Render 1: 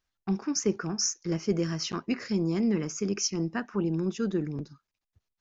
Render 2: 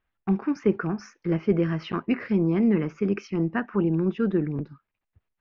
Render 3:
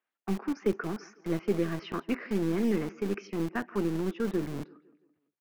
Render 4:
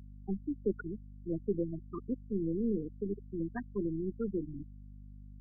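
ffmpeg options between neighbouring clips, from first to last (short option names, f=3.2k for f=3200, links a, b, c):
-af "lowpass=f=2.7k:w=0.5412,lowpass=f=2.7k:w=1.3066,volume=5dB"
-filter_complex "[0:a]aecho=1:1:168|336|504|672:0.0944|0.0453|0.0218|0.0104,acrossover=split=220|380|2700[a][b][c][d];[a]acrusher=bits=3:dc=4:mix=0:aa=0.000001[e];[e][b][c][d]amix=inputs=4:normalize=0,volume=-5dB"
-af "afftfilt=real='re*gte(hypot(re,im),0.1)':imag='im*gte(hypot(re,im),0.1)':win_size=1024:overlap=0.75,aeval=exprs='val(0)+0.00631*(sin(2*PI*50*n/s)+sin(2*PI*2*50*n/s)/2+sin(2*PI*3*50*n/s)/3+sin(2*PI*4*50*n/s)/4+sin(2*PI*5*50*n/s)/5)':c=same,volume=-4.5dB"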